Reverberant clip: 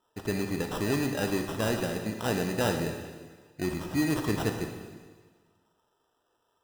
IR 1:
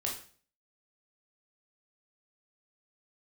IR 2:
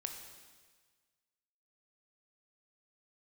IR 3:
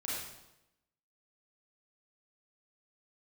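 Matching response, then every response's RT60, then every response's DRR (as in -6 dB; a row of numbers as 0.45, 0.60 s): 2; 0.45, 1.5, 0.95 s; -2.0, 4.0, -7.5 dB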